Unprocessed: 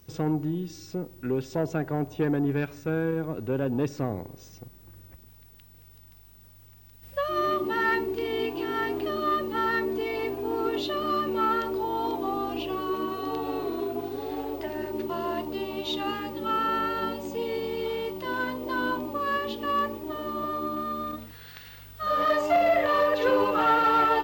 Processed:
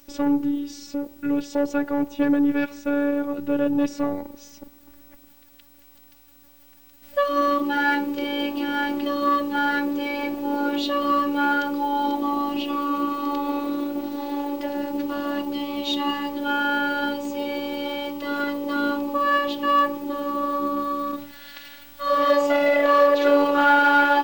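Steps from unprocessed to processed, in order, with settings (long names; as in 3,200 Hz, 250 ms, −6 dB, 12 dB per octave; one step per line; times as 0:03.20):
high-pass filter 97 Hz
phases set to zero 287 Hz
level +7.5 dB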